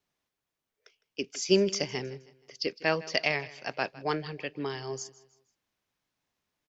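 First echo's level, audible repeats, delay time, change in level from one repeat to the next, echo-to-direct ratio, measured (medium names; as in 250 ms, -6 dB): -19.5 dB, 2, 158 ms, -8.0 dB, -19.0 dB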